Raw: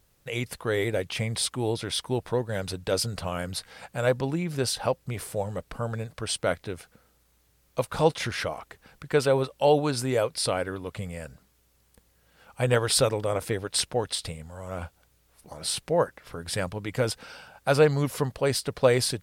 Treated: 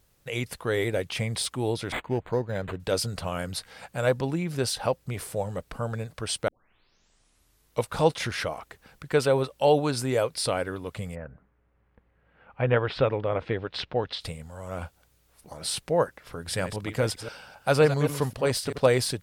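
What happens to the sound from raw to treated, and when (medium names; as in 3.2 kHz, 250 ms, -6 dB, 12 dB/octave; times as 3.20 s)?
1.92–2.80 s: decimation joined by straight lines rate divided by 8×
6.48 s: tape start 1.41 s
11.14–14.20 s: low-pass 1.7 kHz -> 4.2 kHz 24 dB/octave
16.37–18.87 s: chunks repeated in reverse 131 ms, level -10 dB
whole clip: de-esser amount 45%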